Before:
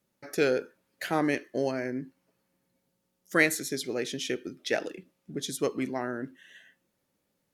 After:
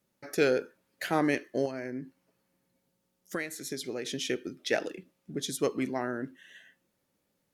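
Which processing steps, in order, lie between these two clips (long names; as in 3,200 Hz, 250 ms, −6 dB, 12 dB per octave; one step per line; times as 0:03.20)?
0:01.65–0:04.06: downward compressor 6 to 1, threshold −32 dBFS, peak gain reduction 15 dB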